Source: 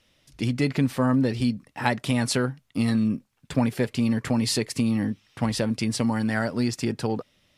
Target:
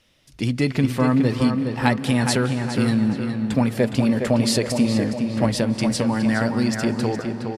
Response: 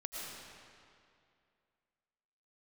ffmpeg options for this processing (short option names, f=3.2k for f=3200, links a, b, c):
-filter_complex "[0:a]asettb=1/sr,asplit=3[a][b][c];[a]atrim=end=3.714[d];[b]atrim=start=3.71:end=5.51,asetpts=PTS-STARTPTS,afade=t=in:d=0.004:c=qsin,afade=t=out:st=1.796:d=0.004:c=qsin,equalizer=f=590:w=4:g=10[e];[c]atrim=start=5.506[f];[d][e]acrossfade=d=0.004:c1=hsin:c2=qsin[g];[g][f]acrossfade=d=0.004:c1=qsin:c2=hsin,asplit=2[h][i];[i]adelay=414,lowpass=f=3.3k:p=1,volume=-5.5dB,asplit=2[j][k];[k]adelay=414,lowpass=f=3.3k:p=1,volume=0.46,asplit=2[l][m];[m]adelay=414,lowpass=f=3.3k:p=1,volume=0.46,asplit=2[n][o];[o]adelay=414,lowpass=f=3.3k:p=1,volume=0.46,asplit=2[p][q];[q]adelay=414,lowpass=f=3.3k:p=1,volume=0.46,asplit=2[r][s];[s]adelay=414,lowpass=f=3.3k:p=1,volume=0.46[t];[h][j][l][n][p][r][t]amix=inputs=7:normalize=0,asplit=2[u][v];[1:a]atrim=start_sample=2205,asetrate=25578,aresample=44100[w];[v][w]afir=irnorm=-1:irlink=0,volume=-15dB[x];[u][x]amix=inputs=2:normalize=0,volume=1.5dB"